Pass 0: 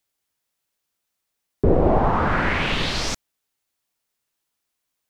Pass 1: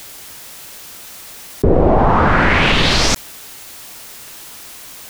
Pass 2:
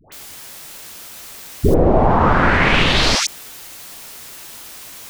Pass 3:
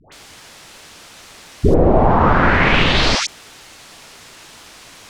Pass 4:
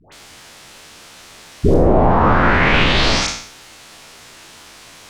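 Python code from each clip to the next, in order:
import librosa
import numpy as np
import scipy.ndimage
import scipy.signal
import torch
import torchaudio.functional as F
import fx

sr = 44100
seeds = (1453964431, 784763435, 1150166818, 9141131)

y1 = fx.env_flatten(x, sr, amount_pct=70)
y1 = F.gain(torch.from_numpy(y1), 3.5).numpy()
y2 = fx.dispersion(y1, sr, late='highs', ms=123.0, hz=910.0)
y2 = F.gain(torch.from_numpy(y2), -1.0).numpy()
y3 = fx.air_absorb(y2, sr, metres=68.0)
y3 = F.gain(torch.from_numpy(y3), 1.0).numpy()
y4 = fx.spec_trails(y3, sr, decay_s=0.62)
y4 = F.gain(torch.from_numpy(y4), -2.0).numpy()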